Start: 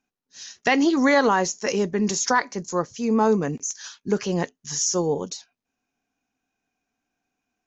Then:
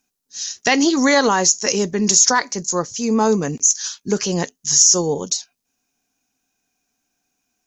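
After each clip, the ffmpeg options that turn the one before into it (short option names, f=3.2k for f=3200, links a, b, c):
-af "bass=f=250:g=1,treble=f=4k:g=14,alimiter=level_in=3.5dB:limit=-1dB:release=50:level=0:latency=1,volume=-1dB"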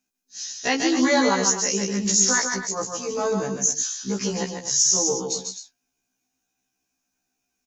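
-filter_complex "[0:a]asplit=2[a][b];[b]aecho=0:1:145.8|253.6:0.562|0.282[c];[a][c]amix=inputs=2:normalize=0,afftfilt=real='re*1.73*eq(mod(b,3),0)':imag='im*1.73*eq(mod(b,3),0)':win_size=2048:overlap=0.75,volume=-4dB"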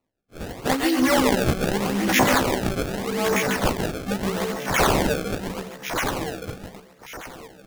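-af "aecho=1:1:1169|2338|3507:0.501|0.12|0.0289,acrusher=samples=26:mix=1:aa=0.000001:lfo=1:lforange=41.6:lforate=0.81"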